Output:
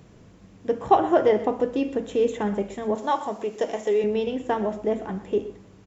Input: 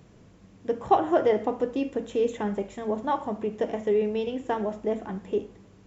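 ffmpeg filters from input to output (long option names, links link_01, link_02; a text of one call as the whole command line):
ffmpeg -i in.wav -filter_complex "[0:a]asettb=1/sr,asplit=3[link_01][link_02][link_03];[link_01]atrim=end=2.954[link_04];[link_02]atrim=start=2.95:end=4.04,asetpts=PTS-STARTPTS,afade=type=in:duration=0.004:curve=qsin,afade=type=out:start_time=1.086:duration=0.004:curve=qsin,bass=frequency=250:gain=-12,treble=frequency=4000:gain=11[link_05];[link_03]atrim=start=4.036[link_06];[link_04][link_05]acrossfade=duration=0.004:curve1=hsin:curve2=qsin[link_07];[link_07][link_06]acrossfade=duration=0.004:curve1=qsin:curve2=hsin,asplit=2[link_08][link_09];[link_09]adelay=122.4,volume=-15dB,highshelf=frequency=4000:gain=-2.76[link_10];[link_08][link_10]amix=inputs=2:normalize=0,volume=3dB" out.wav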